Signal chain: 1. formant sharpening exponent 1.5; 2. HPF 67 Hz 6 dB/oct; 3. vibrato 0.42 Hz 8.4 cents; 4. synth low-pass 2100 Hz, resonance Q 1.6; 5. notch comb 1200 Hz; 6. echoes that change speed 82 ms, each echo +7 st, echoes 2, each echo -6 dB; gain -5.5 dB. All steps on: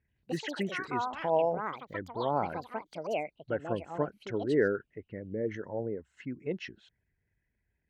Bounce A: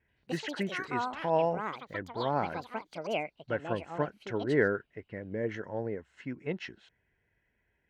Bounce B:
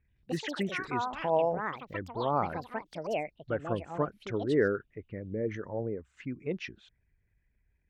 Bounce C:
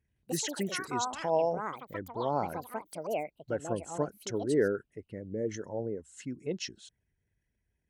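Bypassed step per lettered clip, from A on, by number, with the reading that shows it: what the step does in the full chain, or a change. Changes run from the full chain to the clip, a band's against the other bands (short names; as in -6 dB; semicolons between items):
1, 2 kHz band +2.5 dB; 5, 125 Hz band +2.0 dB; 4, 4 kHz band +4.5 dB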